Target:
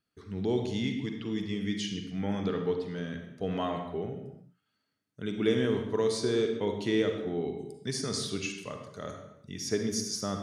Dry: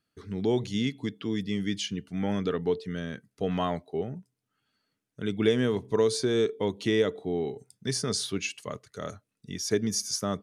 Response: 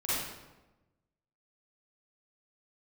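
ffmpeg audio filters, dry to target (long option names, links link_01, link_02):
-filter_complex "[0:a]asplit=2[link_01][link_02];[1:a]atrim=start_sample=2205,afade=type=out:start_time=0.43:duration=0.01,atrim=end_sample=19404,lowpass=8300[link_03];[link_02][link_03]afir=irnorm=-1:irlink=0,volume=-9.5dB[link_04];[link_01][link_04]amix=inputs=2:normalize=0,volume=-5.5dB"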